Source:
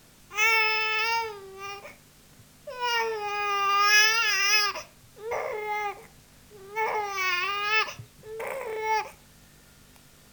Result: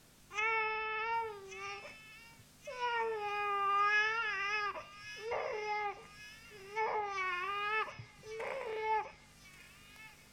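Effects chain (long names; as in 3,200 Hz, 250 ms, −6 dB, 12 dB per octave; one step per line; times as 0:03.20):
treble cut that deepens with the level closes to 1,800 Hz, closed at −24 dBFS
delay with a high-pass on its return 1,136 ms, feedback 58%, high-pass 4,500 Hz, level −3 dB
level −7 dB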